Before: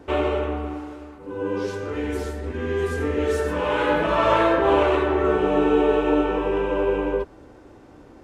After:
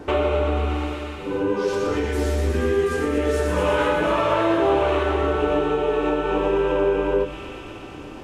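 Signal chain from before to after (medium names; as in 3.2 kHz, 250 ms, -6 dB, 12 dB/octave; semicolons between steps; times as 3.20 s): feedback echo behind a high-pass 119 ms, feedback 85%, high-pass 2.7 kHz, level -6 dB; compression 4:1, threshold -28 dBFS, peak gain reduction 12 dB; on a send at -5 dB: reverberation RT60 0.50 s, pre-delay 5 ms; on the sum: trim +7.5 dB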